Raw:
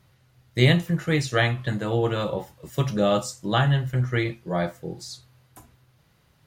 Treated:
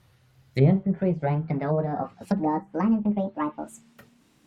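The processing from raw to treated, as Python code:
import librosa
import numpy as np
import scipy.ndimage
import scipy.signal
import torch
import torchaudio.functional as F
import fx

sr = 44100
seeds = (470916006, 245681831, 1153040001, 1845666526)

y = fx.speed_glide(x, sr, from_pct=94, to_pct=196)
y = fx.env_lowpass_down(y, sr, base_hz=670.0, full_db=-20.5)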